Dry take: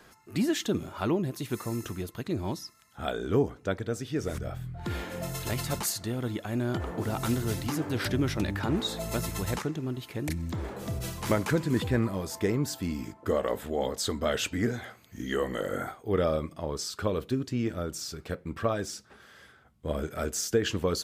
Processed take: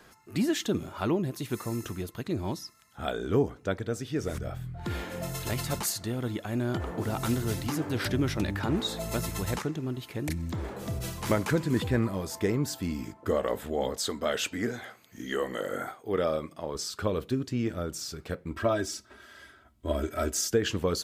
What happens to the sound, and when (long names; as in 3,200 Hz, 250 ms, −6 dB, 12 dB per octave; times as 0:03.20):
0:13.97–0:16.75: high-pass filter 250 Hz 6 dB per octave
0:18.51–0:20.50: comb filter 3.1 ms, depth 81%